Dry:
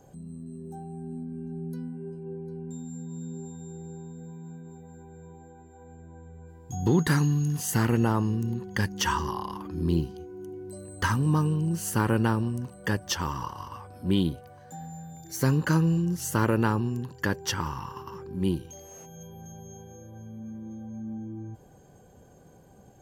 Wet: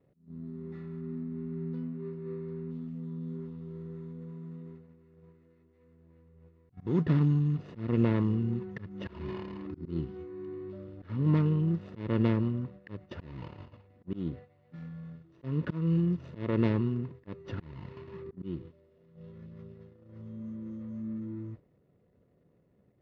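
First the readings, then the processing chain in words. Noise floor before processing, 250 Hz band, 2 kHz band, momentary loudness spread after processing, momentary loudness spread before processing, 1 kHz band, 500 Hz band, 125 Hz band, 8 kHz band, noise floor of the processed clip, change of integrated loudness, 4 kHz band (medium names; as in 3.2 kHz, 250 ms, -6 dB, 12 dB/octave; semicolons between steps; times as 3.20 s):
-54 dBFS, -3.0 dB, -14.5 dB, 20 LU, 20 LU, -14.5 dB, -4.0 dB, -3.5 dB, under -35 dB, -67 dBFS, -4.5 dB, under -15 dB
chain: median filter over 41 samples; low-pass 4 kHz 24 dB/octave; slow attack 255 ms; comb of notches 790 Hz; gate -46 dBFS, range -11 dB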